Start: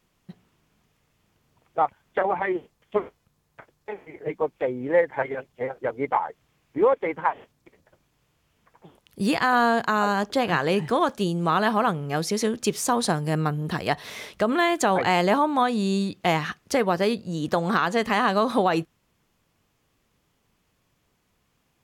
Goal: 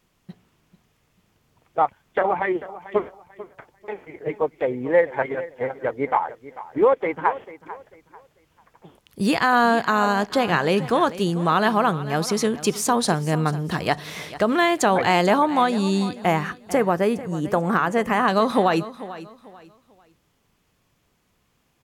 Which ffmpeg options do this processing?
ffmpeg -i in.wav -filter_complex "[0:a]asettb=1/sr,asplit=3[link_01][link_02][link_03];[link_01]atrim=end=16.214[link_04];[link_02]atrim=start=16.21:end=18.28,asetpts=PTS-STARTPTS,afade=type=in:duration=0.004:curve=qsin,afade=type=out:start_time=2.066:duration=0.004:curve=qsin,equalizer=frequency=4100:width=1.6:gain=-15[link_05];[link_03]atrim=start=18.276[link_06];[link_04][link_05]acrossfade=duration=0.004:curve1=hsin:curve2=qsin[link_07];[link_07][link_06]acrossfade=duration=0.004:curve1=qsin:curve2=hsin,aecho=1:1:443|886|1329:0.158|0.046|0.0133,volume=2.5dB" out.wav

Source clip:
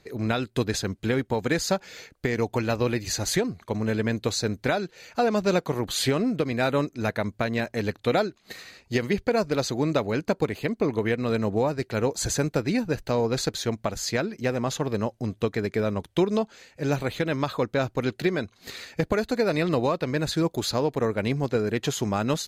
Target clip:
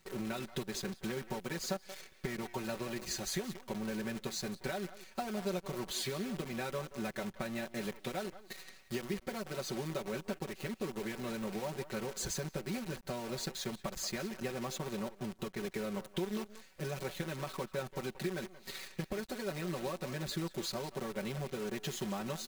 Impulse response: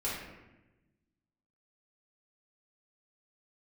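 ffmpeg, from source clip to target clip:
-filter_complex "[0:a]acompressor=threshold=-28dB:ratio=16,asplit=2[link_01][link_02];[link_02]adelay=180,highpass=300,lowpass=3400,asoftclip=type=hard:threshold=-27dB,volume=-10dB[link_03];[link_01][link_03]amix=inputs=2:normalize=0,acrusher=bits=7:dc=4:mix=0:aa=0.000001,aecho=1:1:5.3:0.94,volume=-9dB"

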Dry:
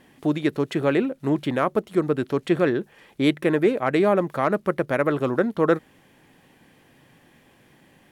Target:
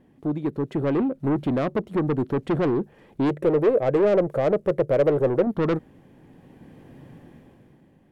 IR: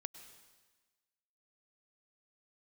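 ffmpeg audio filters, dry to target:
-filter_complex "[0:a]dynaudnorm=framelen=100:gausssize=17:maxgain=13dB,tiltshelf=frequency=920:gain=9.5,asoftclip=type=tanh:threshold=-10dB,asettb=1/sr,asplit=3[link_01][link_02][link_03];[link_01]atrim=end=3.294[link_04];[link_02]atrim=start=3.29:end=5.47,asetpts=PTS-STARTPTS,afade=type=in:duration=0.004:curve=qsin,afade=type=out:start_time=2.176:duration=0.004:curve=qsin,equalizer=frequency=250:width_type=o:width=1:gain=-9,equalizer=frequency=500:width_type=o:width=1:gain=11,equalizer=frequency=1000:width_type=o:width=1:gain=-5,equalizer=frequency=4000:width_type=o:width=1:gain=-3,equalizer=frequency=8000:width_type=o:width=1:gain=4[link_05];[link_03]atrim=start=5.466[link_06];[link_04][link_05]acrossfade=duration=0.004:curve1=hsin:curve2=qsin[link_07];[link_07][link_06]acrossfade=duration=0.004:curve1=qsin:curve2=hsin,volume=-8.5dB"

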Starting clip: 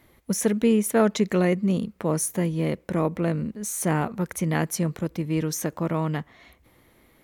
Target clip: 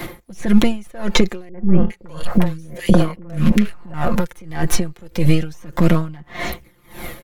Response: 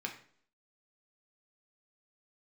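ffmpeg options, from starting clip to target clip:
-filter_complex "[0:a]aeval=exprs='if(lt(val(0),0),0.447*val(0),val(0))':channel_layout=same,acrossover=split=5100[link_01][link_02];[link_02]acompressor=threshold=-44dB:ratio=4:attack=1:release=60[link_03];[link_01][link_03]amix=inputs=2:normalize=0,aecho=1:1:5.7:0.78,acrossover=split=92|1800[link_04][link_05][link_06];[link_04]acompressor=threshold=-36dB:ratio=4[link_07];[link_05]acompressor=threshold=-35dB:ratio=4[link_08];[link_06]acompressor=threshold=-50dB:ratio=4[link_09];[link_07][link_08][link_09]amix=inputs=3:normalize=0,aphaser=in_gain=1:out_gain=1:delay=2.6:decay=0.37:speed=0.32:type=sinusoidal,asoftclip=type=hard:threshold=-21.5dB,asettb=1/sr,asplit=3[link_10][link_11][link_12];[link_10]atrim=end=1.494[link_13];[link_11]atrim=start=1.49:end=3.94,asetpts=PTS-STARTPTS,afade=type=in:duration=0.004:curve=qsin,afade=type=out:start_time=2.446:duration=0.004:curve=qsin,acrossover=split=430|1700[link_14][link_15][link_16];[link_15]adelay=50[link_17];[link_16]adelay=410[link_18];[link_14][link_17][link_18]amix=inputs=3:normalize=0,atrim=end_sample=108045[link_19];[link_12]atrim=start=3.936[link_20];[link_13][link_19]acrossfade=duration=0.004:curve1=hsin:curve2=qsin[link_21];[link_21][link_20]acrossfade=duration=0.004:curve1=qsin:curve2=hsin,alimiter=level_in=28dB:limit=-1dB:release=50:level=0:latency=1,aeval=exprs='val(0)*pow(10,-28*(0.5-0.5*cos(2*PI*1.7*n/s))/20)':channel_layout=same"

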